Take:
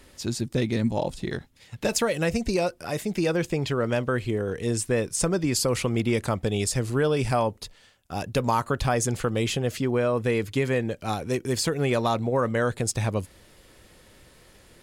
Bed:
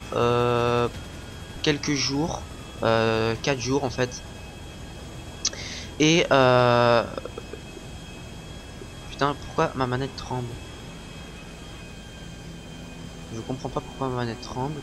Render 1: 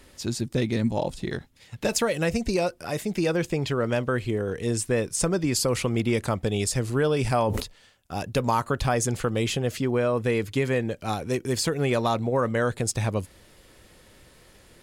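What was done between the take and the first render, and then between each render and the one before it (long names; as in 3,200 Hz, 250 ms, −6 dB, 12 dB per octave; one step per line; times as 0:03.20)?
0:07.21–0:07.62: level that may fall only so fast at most 34 dB per second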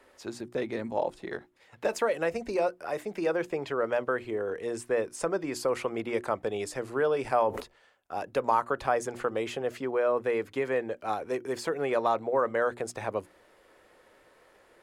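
three-way crossover with the lows and the highs turned down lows −19 dB, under 340 Hz, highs −14 dB, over 2,000 Hz
mains-hum notches 60/120/180/240/300/360 Hz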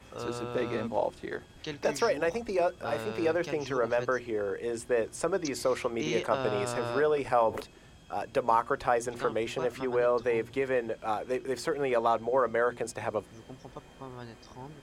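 mix in bed −16 dB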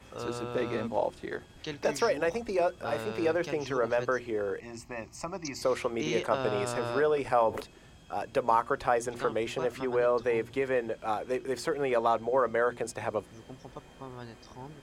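0:04.60–0:05.62: phaser with its sweep stopped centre 2,300 Hz, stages 8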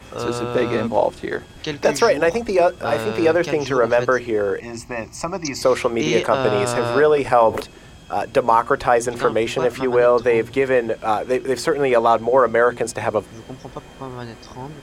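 level +11.5 dB
brickwall limiter −3 dBFS, peak gain reduction 2.5 dB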